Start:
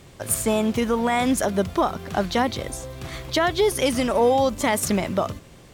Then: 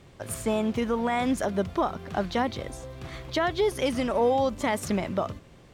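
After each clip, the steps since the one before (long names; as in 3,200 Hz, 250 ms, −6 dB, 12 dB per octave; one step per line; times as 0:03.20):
high-shelf EQ 6,100 Hz −11 dB
level −4.5 dB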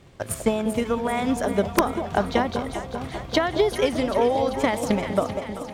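transient designer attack +8 dB, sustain +1 dB
delay that swaps between a low-pass and a high-pass 195 ms, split 890 Hz, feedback 82%, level −8 dB
wrap-around overflow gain 6.5 dB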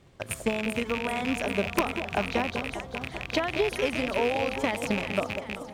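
loose part that buzzes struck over −32 dBFS, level −13 dBFS
level −6 dB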